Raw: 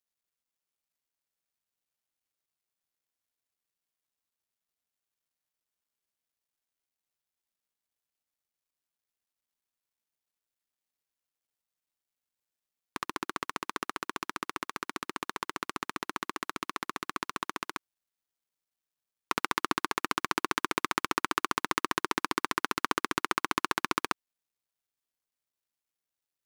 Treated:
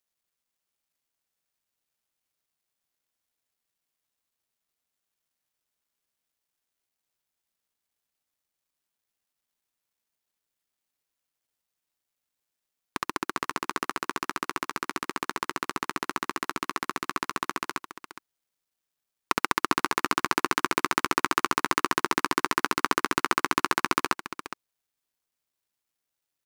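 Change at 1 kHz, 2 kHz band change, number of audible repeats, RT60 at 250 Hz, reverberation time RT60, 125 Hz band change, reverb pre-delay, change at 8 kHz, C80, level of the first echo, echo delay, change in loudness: +4.5 dB, +4.5 dB, 1, no reverb audible, no reverb audible, +5.0 dB, no reverb audible, +4.5 dB, no reverb audible, −12.0 dB, 414 ms, +4.5 dB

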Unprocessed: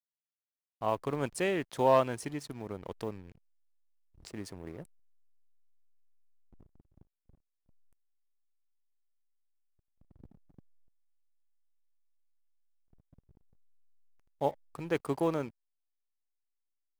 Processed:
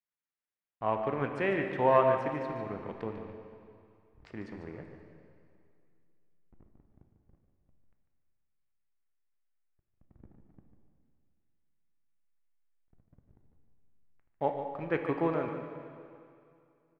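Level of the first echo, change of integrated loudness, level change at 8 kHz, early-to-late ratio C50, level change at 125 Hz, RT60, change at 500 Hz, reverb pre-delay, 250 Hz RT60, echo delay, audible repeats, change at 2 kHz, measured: −10.0 dB, +1.5 dB, below −20 dB, 4.5 dB, +0.5 dB, 2.4 s, +1.5 dB, 5 ms, 2.3 s, 147 ms, 1, +3.5 dB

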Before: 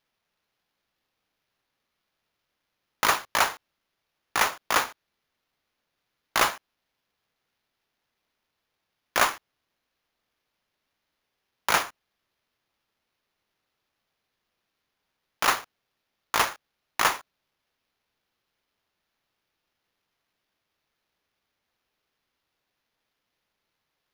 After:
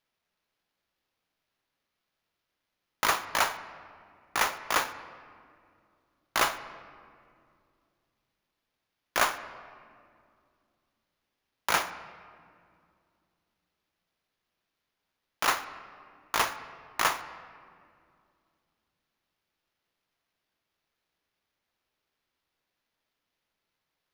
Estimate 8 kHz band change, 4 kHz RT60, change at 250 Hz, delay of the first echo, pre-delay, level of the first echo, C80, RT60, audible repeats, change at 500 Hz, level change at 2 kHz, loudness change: −3.5 dB, 1.3 s, −3.0 dB, no echo audible, 3 ms, no echo audible, 14.0 dB, 2.3 s, no echo audible, −3.0 dB, −3.0 dB, −3.5 dB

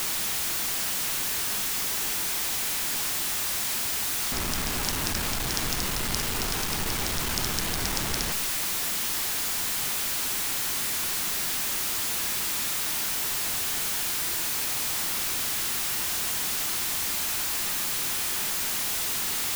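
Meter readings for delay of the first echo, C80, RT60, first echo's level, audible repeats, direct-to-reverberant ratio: no echo audible, 15.5 dB, 0.75 s, no echo audible, no echo audible, 10.5 dB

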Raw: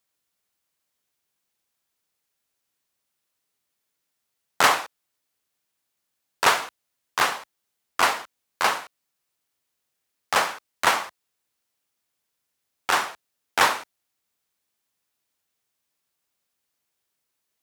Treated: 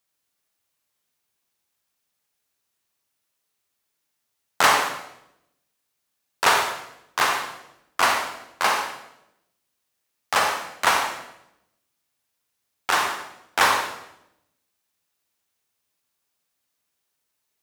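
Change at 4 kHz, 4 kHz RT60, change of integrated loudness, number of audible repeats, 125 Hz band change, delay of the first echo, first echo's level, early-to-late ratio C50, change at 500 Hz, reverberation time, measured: +1.5 dB, 0.75 s, +1.0 dB, no echo audible, +1.5 dB, no echo audible, no echo audible, 4.0 dB, +1.5 dB, 0.85 s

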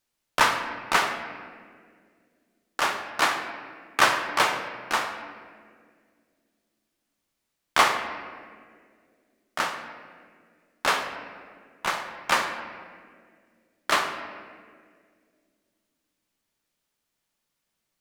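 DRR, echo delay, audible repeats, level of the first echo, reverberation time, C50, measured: 5.0 dB, no echo audible, no echo audible, no echo audible, 2.0 s, 7.5 dB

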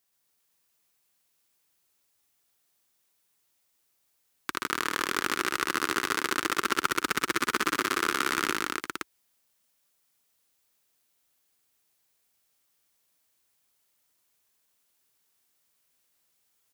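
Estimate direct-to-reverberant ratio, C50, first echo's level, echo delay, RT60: no reverb audible, no reverb audible, −7.5 dB, 57 ms, no reverb audible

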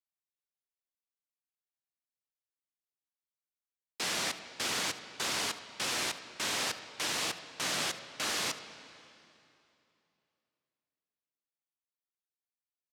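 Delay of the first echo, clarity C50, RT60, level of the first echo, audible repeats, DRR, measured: 74 ms, 10.5 dB, 2.9 s, −18.5 dB, 1, 10.0 dB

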